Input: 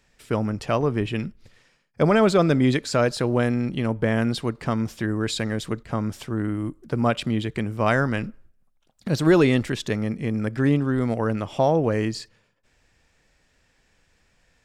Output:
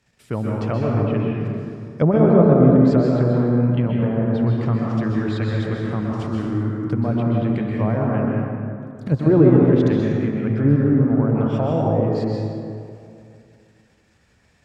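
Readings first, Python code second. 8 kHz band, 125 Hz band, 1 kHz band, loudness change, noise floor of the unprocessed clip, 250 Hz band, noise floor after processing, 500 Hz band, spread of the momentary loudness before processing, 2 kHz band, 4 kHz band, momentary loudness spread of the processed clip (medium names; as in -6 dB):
under -15 dB, +7.0 dB, -0.5 dB, +4.5 dB, -66 dBFS, +5.5 dB, -59 dBFS, +3.5 dB, 10 LU, -6.0 dB, no reading, 13 LU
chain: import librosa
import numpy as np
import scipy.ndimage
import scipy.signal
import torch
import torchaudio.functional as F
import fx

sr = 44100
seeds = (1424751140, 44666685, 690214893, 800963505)

p1 = scipy.signal.sosfilt(scipy.signal.butter(2, 60.0, 'highpass', fs=sr, output='sos'), x)
p2 = fx.env_lowpass_down(p1, sr, base_hz=790.0, full_db=-17.5)
p3 = fx.peak_eq(p2, sr, hz=120.0, db=6.0, octaves=1.8)
p4 = fx.level_steps(p3, sr, step_db=16)
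p5 = p3 + (p4 * 10.0 ** (3.0 / 20.0))
p6 = fx.rev_plate(p5, sr, seeds[0], rt60_s=2.5, hf_ratio=0.5, predelay_ms=115, drr_db=-3.0)
y = p6 * 10.0 ** (-6.5 / 20.0)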